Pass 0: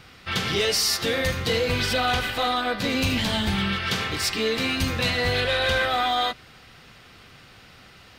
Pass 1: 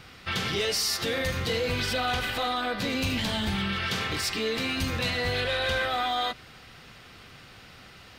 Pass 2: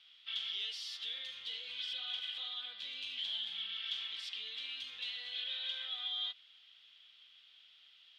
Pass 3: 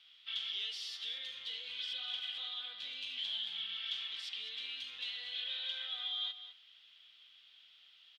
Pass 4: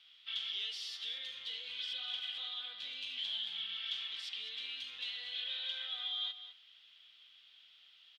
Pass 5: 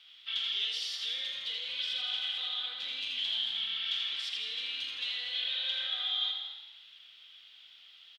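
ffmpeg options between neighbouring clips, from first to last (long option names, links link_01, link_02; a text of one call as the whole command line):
ffmpeg -i in.wav -af "alimiter=limit=-20.5dB:level=0:latency=1:release=72" out.wav
ffmpeg -i in.wav -af "bandpass=frequency=3300:width_type=q:width=9.8:csg=0" out.wav
ffmpeg -i in.wav -filter_complex "[0:a]asplit=2[link_01][link_02];[link_02]adelay=204.1,volume=-11dB,highshelf=frequency=4000:gain=-4.59[link_03];[link_01][link_03]amix=inputs=2:normalize=0" out.wav
ffmpeg -i in.wav -af anull out.wav
ffmpeg -i in.wav -filter_complex "[0:a]asplit=9[link_01][link_02][link_03][link_04][link_05][link_06][link_07][link_08][link_09];[link_02]adelay=82,afreqshift=31,volume=-5.5dB[link_10];[link_03]adelay=164,afreqshift=62,volume=-10.4dB[link_11];[link_04]adelay=246,afreqshift=93,volume=-15.3dB[link_12];[link_05]adelay=328,afreqshift=124,volume=-20.1dB[link_13];[link_06]adelay=410,afreqshift=155,volume=-25dB[link_14];[link_07]adelay=492,afreqshift=186,volume=-29.9dB[link_15];[link_08]adelay=574,afreqshift=217,volume=-34.8dB[link_16];[link_09]adelay=656,afreqshift=248,volume=-39.7dB[link_17];[link_01][link_10][link_11][link_12][link_13][link_14][link_15][link_16][link_17]amix=inputs=9:normalize=0,volume=5dB" out.wav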